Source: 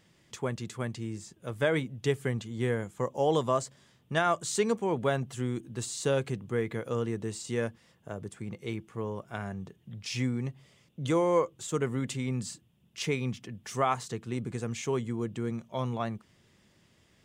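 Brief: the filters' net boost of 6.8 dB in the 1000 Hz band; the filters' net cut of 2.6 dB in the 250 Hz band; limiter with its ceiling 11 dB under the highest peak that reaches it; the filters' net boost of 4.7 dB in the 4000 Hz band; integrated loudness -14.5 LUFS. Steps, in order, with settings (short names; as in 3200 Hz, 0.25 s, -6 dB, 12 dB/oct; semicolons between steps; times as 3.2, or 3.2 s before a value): bell 250 Hz -4 dB; bell 1000 Hz +8.5 dB; bell 4000 Hz +5.5 dB; gain +19 dB; limiter -0.5 dBFS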